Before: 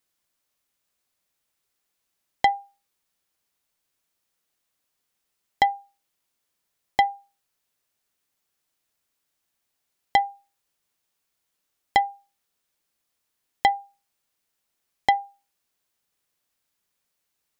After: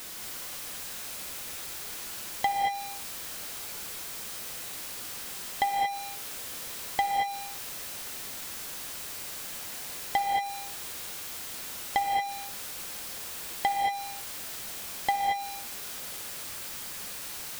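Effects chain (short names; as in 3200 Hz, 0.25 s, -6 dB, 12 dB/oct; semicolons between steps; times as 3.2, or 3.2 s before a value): zero-crossing step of -26.5 dBFS; non-linear reverb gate 0.25 s rising, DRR 1 dB; gain -8.5 dB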